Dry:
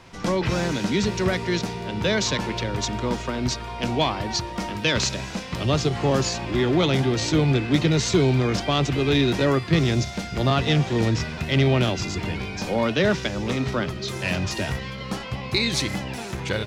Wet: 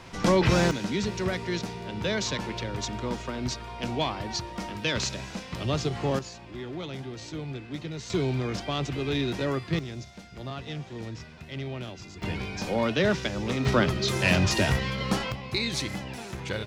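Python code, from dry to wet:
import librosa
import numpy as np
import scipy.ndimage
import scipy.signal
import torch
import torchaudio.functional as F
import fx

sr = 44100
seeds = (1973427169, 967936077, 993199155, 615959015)

y = fx.gain(x, sr, db=fx.steps((0.0, 2.0), (0.71, -6.0), (6.19, -16.0), (8.1, -8.0), (9.79, -16.0), (12.22, -3.5), (13.65, 3.0), (15.32, -6.0)))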